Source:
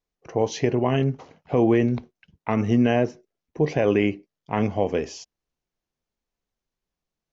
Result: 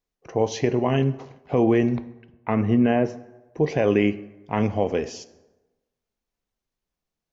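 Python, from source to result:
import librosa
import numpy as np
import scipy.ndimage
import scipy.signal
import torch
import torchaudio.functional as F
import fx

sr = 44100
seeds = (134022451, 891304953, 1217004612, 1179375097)

y = fx.lowpass(x, sr, hz=fx.line((1.96, 3400.0), (3.04, 2300.0)), slope=12, at=(1.96, 3.04), fade=0.02)
y = fx.rev_plate(y, sr, seeds[0], rt60_s=1.1, hf_ratio=0.6, predelay_ms=0, drr_db=14.0)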